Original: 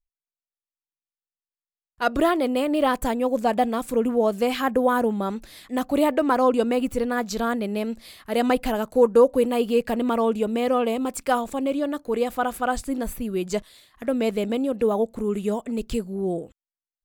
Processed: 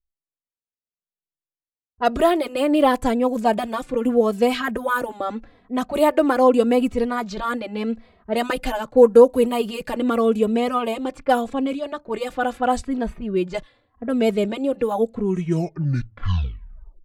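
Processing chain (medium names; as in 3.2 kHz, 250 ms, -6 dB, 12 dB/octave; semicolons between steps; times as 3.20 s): tape stop on the ending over 1.90 s; level-controlled noise filter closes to 470 Hz, open at -18.5 dBFS; endless flanger 2.8 ms -0.83 Hz; trim +5.5 dB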